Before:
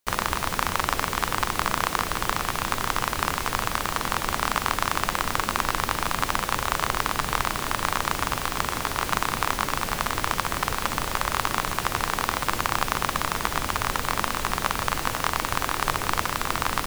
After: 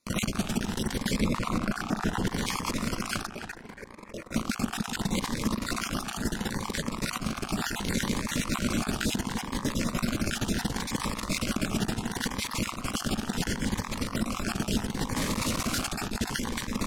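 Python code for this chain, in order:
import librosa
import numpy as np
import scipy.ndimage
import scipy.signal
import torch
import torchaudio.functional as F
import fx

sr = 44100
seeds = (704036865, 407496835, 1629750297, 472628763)

y = fx.spec_dropout(x, sr, seeds[0], share_pct=28)
y = fx.high_shelf(y, sr, hz=2700.0, db=-11.0, at=(1.2, 2.27))
y = fx.spec_box(y, sr, start_s=3.28, length_s=1.04, low_hz=320.0, high_hz=2600.0, gain_db=11)
y = fx.over_compress(y, sr, threshold_db=-32.0, ratio=-0.5)
y = fx.peak_eq(y, sr, hz=220.0, db=12.5, octaves=0.85)
y = fx.echo_filtered(y, sr, ms=284, feedback_pct=33, hz=3300.0, wet_db=-10.0)
y = fx.quant_companded(y, sr, bits=2, at=(15.15, 15.86), fade=0.02)
y = scipy.signal.sosfilt(scipy.signal.butter(2, 10000.0, 'lowpass', fs=sr, output='sos'), y)
y = 10.0 ** (-11.5 / 20.0) * np.tanh(y / 10.0 ** (-11.5 / 20.0))
y = fx.notch_cascade(y, sr, direction='rising', hz=0.71)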